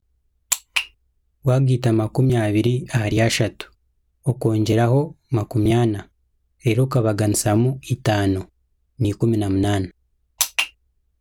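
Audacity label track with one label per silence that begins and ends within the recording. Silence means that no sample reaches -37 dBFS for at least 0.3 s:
0.870000	1.450000	silence
3.660000	4.260000	silence
6.030000	6.640000	silence
8.450000	8.990000	silence
9.890000	10.410000	silence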